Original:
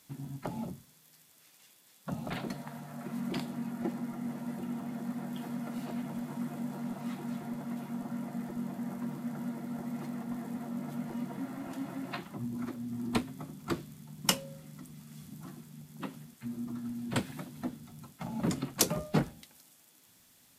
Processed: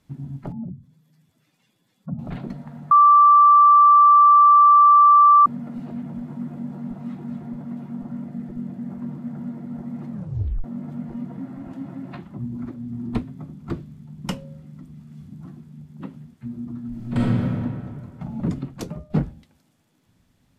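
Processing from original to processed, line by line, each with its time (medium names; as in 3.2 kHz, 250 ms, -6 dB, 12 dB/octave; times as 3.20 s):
0.52–2.19 s: spectral contrast enhancement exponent 1.7
2.91–5.46 s: bleep 1.17 kHz -6.5 dBFS
8.24–8.90 s: peaking EQ 970 Hz -5.5 dB 0.88 oct
10.10 s: tape stop 0.54 s
16.88–17.51 s: reverb throw, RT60 2.2 s, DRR -7 dB
18.57–19.10 s: fade out, to -10 dB
whole clip: RIAA curve playback; trim -1.5 dB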